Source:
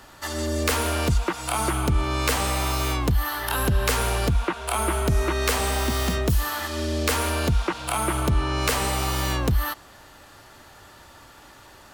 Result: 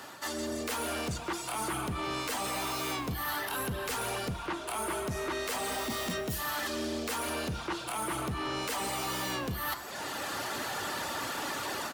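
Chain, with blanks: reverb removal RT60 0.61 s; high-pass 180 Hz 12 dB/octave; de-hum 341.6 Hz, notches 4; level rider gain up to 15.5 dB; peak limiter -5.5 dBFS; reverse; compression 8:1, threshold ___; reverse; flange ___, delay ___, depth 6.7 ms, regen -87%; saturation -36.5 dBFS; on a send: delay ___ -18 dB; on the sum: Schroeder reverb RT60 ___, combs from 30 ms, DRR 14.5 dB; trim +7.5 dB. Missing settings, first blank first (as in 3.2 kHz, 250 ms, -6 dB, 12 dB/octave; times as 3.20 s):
-32 dBFS, 1.4 Hz, 6.4 ms, 180 ms, 1.5 s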